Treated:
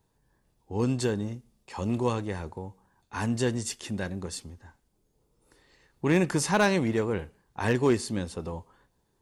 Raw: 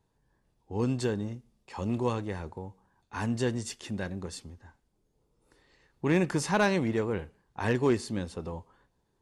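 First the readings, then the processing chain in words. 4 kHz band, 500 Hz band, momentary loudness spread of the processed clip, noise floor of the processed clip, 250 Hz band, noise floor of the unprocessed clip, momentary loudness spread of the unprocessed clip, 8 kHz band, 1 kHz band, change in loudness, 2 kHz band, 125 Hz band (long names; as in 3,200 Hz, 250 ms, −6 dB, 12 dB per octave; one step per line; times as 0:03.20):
+3.5 dB, +2.0 dB, 16 LU, −72 dBFS, +2.0 dB, −74 dBFS, 18 LU, +5.5 dB, +2.0 dB, +2.0 dB, +2.5 dB, +2.0 dB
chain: high-shelf EQ 7,900 Hz +8 dB
level +2 dB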